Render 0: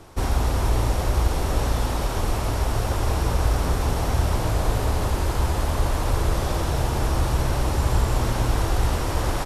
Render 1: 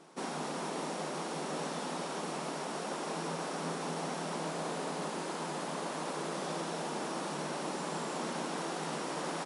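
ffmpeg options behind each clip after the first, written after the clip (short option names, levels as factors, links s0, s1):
-af "afftfilt=real='re*between(b*sr/4096,140,11000)':imag='im*between(b*sr/4096,140,11000)':win_size=4096:overlap=0.75,volume=0.376"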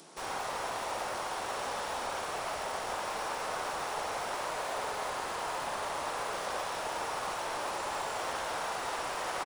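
-filter_complex "[0:a]acrossover=split=490|3300[s0][s1][s2];[s0]aeval=exprs='(mod(150*val(0)+1,2)-1)/150':c=same[s3];[s1]aecho=1:1:52.48|119.5:0.794|0.891[s4];[s2]acompressor=mode=upward:threshold=0.00251:ratio=2.5[s5];[s3][s4][s5]amix=inputs=3:normalize=0,volume=1.12"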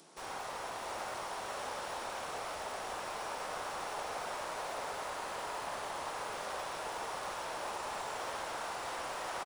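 -af "aecho=1:1:674:0.531,volume=0.531"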